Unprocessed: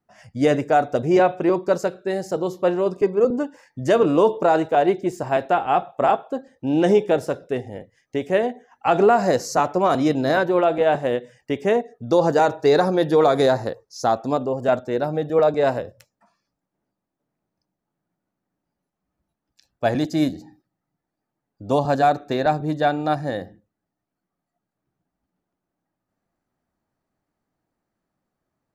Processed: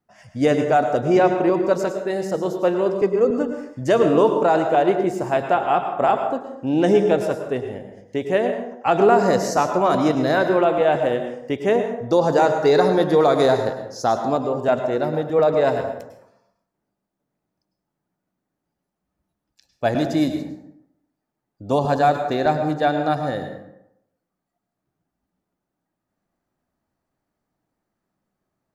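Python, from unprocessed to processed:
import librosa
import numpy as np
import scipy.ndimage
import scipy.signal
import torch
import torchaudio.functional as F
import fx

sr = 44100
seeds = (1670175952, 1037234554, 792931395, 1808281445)

y = fx.rev_plate(x, sr, seeds[0], rt60_s=0.79, hf_ratio=0.55, predelay_ms=90, drr_db=6.5)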